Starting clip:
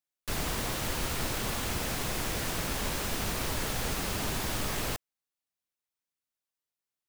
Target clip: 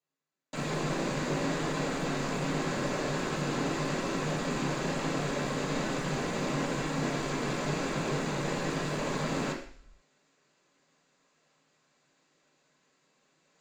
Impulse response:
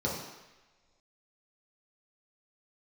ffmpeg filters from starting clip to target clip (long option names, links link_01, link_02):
-filter_complex "[0:a]equalizer=frequency=1700:width=4.3:gain=-7.5,areverse,acompressor=mode=upward:threshold=-53dB:ratio=2.5,areverse,asetrate=22976,aresample=44100,aresample=16000,asoftclip=type=hard:threshold=-32.5dB,aresample=44100,acrusher=bits=6:mode=log:mix=0:aa=0.000001[link_01];[1:a]atrim=start_sample=2205,asetrate=83790,aresample=44100[link_02];[link_01][link_02]afir=irnorm=-1:irlink=0"